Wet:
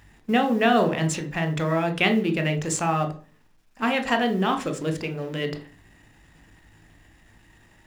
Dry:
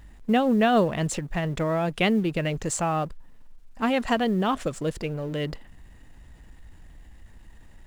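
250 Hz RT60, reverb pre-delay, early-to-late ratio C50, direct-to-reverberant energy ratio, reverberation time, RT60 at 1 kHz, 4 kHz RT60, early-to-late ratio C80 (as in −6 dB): 0.50 s, 16 ms, 12.5 dB, 6.0 dB, 0.40 s, 0.40 s, 0.45 s, 18.5 dB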